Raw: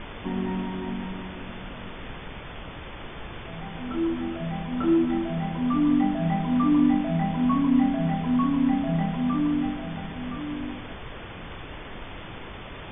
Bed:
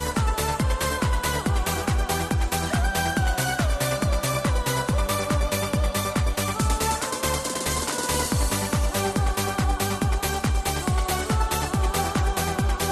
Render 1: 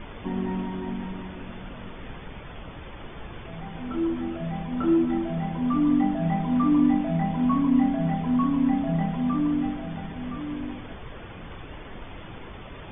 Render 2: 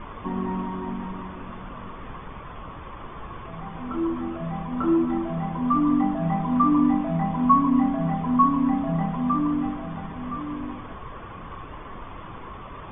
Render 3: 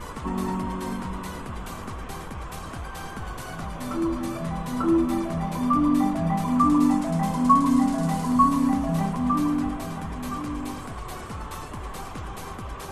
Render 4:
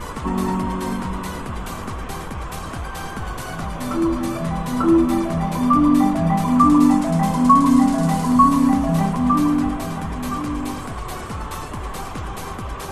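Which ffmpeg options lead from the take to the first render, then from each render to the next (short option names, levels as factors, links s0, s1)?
-af "afftdn=nr=6:nf=-40"
-af "lowpass=f=2300:p=1,equalizer=f=1100:t=o:w=0.39:g=13.5"
-filter_complex "[1:a]volume=0.188[s0];[0:a][s0]amix=inputs=2:normalize=0"
-af "volume=2,alimiter=limit=0.708:level=0:latency=1"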